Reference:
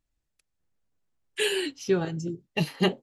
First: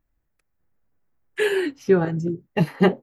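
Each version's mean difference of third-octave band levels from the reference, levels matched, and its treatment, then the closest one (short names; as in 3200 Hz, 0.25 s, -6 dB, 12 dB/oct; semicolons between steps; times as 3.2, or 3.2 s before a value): 3.0 dB: band shelf 5400 Hz -13.5 dB 2.3 oct; gain +7 dB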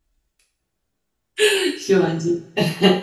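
5.5 dB: two-slope reverb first 0.41 s, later 1.5 s, from -22 dB, DRR -4.5 dB; gain +3.5 dB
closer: first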